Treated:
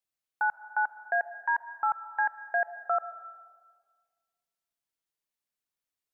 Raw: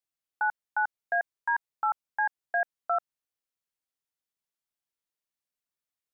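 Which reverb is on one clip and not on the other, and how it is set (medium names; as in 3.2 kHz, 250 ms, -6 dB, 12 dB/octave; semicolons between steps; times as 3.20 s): algorithmic reverb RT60 1.7 s, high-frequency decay 0.4×, pre-delay 85 ms, DRR 14 dB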